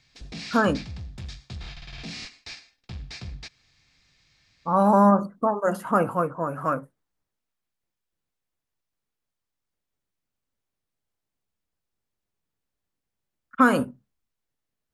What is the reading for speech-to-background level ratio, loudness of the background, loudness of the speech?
16.0 dB, -39.0 LUFS, -23.0 LUFS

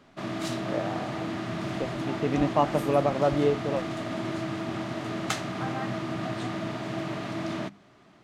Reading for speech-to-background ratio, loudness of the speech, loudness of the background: 4.0 dB, -28.5 LUFS, -32.5 LUFS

